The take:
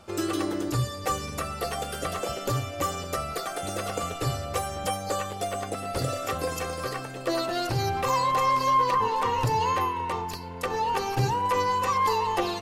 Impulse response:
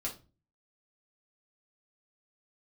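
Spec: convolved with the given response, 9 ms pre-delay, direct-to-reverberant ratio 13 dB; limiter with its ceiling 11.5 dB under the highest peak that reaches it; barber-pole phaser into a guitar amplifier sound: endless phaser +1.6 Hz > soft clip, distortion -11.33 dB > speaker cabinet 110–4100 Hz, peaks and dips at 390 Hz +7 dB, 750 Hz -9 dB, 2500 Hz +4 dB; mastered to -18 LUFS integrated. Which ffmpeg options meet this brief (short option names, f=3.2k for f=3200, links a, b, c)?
-filter_complex "[0:a]alimiter=level_in=3dB:limit=-24dB:level=0:latency=1,volume=-3dB,asplit=2[a][b];[1:a]atrim=start_sample=2205,adelay=9[c];[b][c]afir=irnorm=-1:irlink=0,volume=-14.5dB[d];[a][d]amix=inputs=2:normalize=0,asplit=2[e][f];[f]afreqshift=1.6[g];[e][g]amix=inputs=2:normalize=1,asoftclip=threshold=-37.5dB,highpass=110,equalizer=f=390:t=q:w=4:g=7,equalizer=f=750:t=q:w=4:g=-9,equalizer=f=2.5k:t=q:w=4:g=4,lowpass=f=4.1k:w=0.5412,lowpass=f=4.1k:w=1.3066,volume=24dB"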